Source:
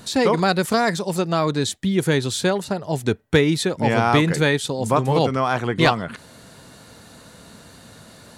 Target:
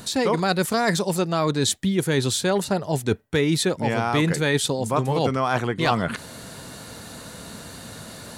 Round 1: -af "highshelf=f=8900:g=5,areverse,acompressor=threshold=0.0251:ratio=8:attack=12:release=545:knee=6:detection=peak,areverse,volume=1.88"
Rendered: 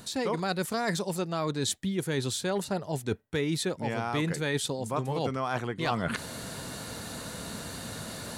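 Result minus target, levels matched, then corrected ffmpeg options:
compression: peak gain reduction +8.5 dB
-af "highshelf=f=8900:g=5,areverse,acompressor=threshold=0.075:ratio=8:attack=12:release=545:knee=6:detection=peak,areverse,volume=1.88"

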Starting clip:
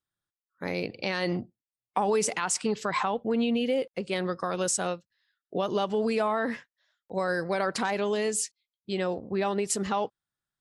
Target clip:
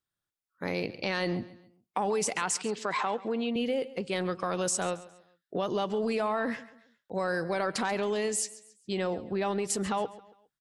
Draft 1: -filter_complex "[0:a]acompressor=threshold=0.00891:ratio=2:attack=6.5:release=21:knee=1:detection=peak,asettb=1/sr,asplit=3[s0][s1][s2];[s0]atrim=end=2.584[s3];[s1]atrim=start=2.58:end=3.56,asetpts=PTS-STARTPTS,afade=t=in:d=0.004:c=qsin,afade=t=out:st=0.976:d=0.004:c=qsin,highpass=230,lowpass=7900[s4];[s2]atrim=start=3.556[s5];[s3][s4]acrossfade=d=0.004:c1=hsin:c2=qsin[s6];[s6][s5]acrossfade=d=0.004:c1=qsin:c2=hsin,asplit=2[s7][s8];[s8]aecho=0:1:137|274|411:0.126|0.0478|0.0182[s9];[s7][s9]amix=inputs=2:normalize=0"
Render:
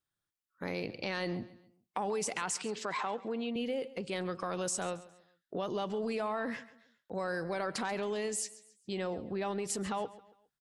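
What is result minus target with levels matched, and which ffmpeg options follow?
compression: peak gain reduction +5.5 dB
-filter_complex "[0:a]acompressor=threshold=0.0299:ratio=2:attack=6.5:release=21:knee=1:detection=peak,asettb=1/sr,asplit=3[s0][s1][s2];[s0]atrim=end=2.584[s3];[s1]atrim=start=2.58:end=3.56,asetpts=PTS-STARTPTS,afade=t=in:d=0.004:c=qsin,afade=t=out:st=0.976:d=0.004:c=qsin,highpass=230,lowpass=7900[s4];[s2]atrim=start=3.556[s5];[s3][s4]acrossfade=d=0.004:c1=hsin:c2=qsin[s6];[s6][s5]acrossfade=d=0.004:c1=qsin:c2=hsin,asplit=2[s7][s8];[s8]aecho=0:1:137|274|411:0.126|0.0478|0.0182[s9];[s7][s9]amix=inputs=2:normalize=0"

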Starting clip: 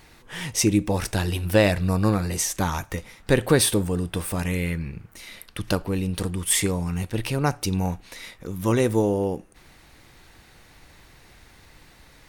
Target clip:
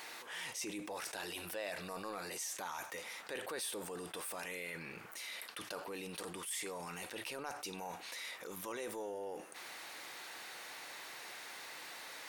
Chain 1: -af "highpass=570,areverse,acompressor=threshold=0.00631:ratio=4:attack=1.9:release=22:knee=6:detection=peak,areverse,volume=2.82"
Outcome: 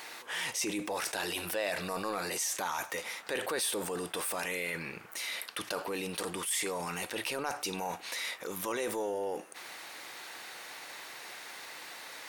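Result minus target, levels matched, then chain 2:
compression: peak gain reduction -8.5 dB
-af "highpass=570,areverse,acompressor=threshold=0.00168:ratio=4:attack=1.9:release=22:knee=6:detection=peak,areverse,volume=2.82"

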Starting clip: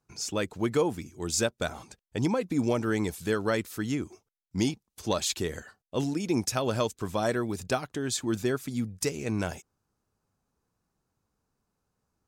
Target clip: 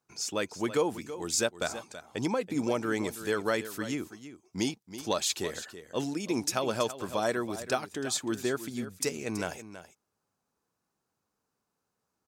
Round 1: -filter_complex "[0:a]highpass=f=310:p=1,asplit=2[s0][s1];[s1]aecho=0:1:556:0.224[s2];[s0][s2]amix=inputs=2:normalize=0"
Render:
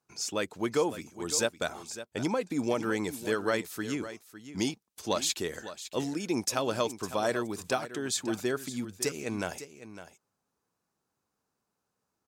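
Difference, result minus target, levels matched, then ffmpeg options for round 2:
echo 228 ms late
-filter_complex "[0:a]highpass=f=310:p=1,asplit=2[s0][s1];[s1]aecho=0:1:328:0.224[s2];[s0][s2]amix=inputs=2:normalize=0"

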